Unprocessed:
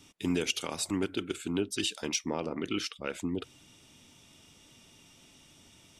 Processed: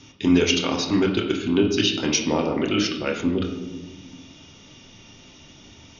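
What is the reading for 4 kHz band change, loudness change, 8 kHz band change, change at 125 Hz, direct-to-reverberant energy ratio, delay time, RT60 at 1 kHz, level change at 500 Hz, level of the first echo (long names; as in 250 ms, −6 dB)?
+10.5 dB, +11.0 dB, +7.0 dB, +12.0 dB, 1.5 dB, no echo audible, 0.90 s, +12.0 dB, no echo audible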